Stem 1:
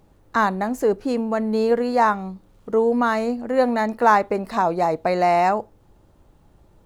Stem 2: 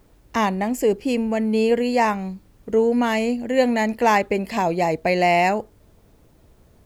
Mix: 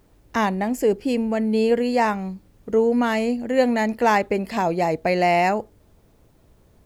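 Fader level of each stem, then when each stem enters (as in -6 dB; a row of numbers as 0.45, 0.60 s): -10.5, -2.5 dB; 0.00, 0.00 s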